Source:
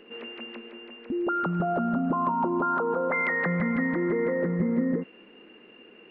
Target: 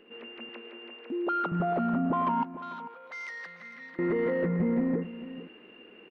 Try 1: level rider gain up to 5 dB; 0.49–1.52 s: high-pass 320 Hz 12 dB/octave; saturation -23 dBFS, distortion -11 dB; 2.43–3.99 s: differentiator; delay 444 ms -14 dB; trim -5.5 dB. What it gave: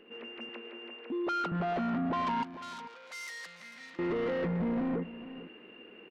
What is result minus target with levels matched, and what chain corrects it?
saturation: distortion +11 dB
level rider gain up to 5 dB; 0.49–1.52 s: high-pass 320 Hz 12 dB/octave; saturation -13.5 dBFS, distortion -22 dB; 2.43–3.99 s: differentiator; delay 444 ms -14 dB; trim -5.5 dB

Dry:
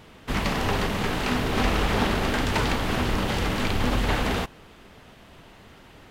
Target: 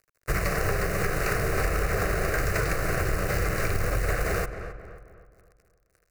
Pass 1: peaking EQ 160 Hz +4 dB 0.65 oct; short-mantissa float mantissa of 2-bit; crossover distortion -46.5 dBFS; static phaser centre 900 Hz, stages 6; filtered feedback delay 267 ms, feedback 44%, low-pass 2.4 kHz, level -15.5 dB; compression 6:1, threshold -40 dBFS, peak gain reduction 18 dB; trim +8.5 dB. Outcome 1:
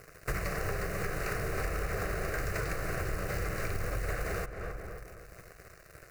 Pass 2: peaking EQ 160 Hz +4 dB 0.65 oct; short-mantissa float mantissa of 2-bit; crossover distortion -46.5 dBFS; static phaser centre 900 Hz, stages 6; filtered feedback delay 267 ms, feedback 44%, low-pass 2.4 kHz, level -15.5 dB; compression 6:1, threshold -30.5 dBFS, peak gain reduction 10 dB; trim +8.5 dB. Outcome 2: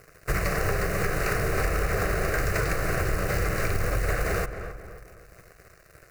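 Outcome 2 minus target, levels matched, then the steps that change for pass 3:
crossover distortion: distortion -6 dB
change: crossover distortion -39.5 dBFS

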